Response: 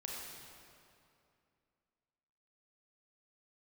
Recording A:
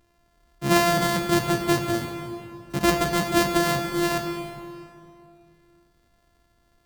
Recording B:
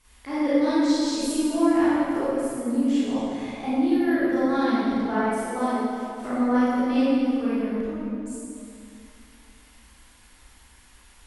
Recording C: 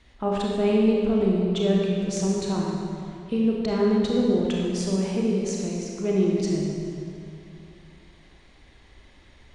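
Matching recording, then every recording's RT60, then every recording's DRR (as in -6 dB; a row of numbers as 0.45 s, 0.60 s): C; 2.6 s, 2.6 s, 2.6 s; 3.5 dB, -12.0 dB, -3.0 dB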